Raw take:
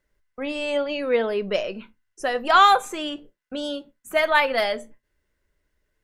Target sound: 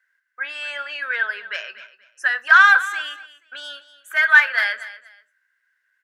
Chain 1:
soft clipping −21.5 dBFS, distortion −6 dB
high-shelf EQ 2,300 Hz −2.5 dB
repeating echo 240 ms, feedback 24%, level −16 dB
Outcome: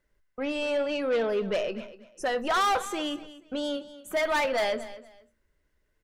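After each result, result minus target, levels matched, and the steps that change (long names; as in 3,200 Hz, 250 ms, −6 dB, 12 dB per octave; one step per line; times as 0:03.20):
2,000 Hz band −7.5 dB; soft clipping: distortion +9 dB
add after soft clipping: high-pass with resonance 1,600 Hz, resonance Q 11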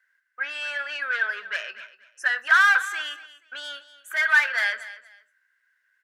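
soft clipping: distortion +9 dB
change: soft clipping −11.5 dBFS, distortion −15 dB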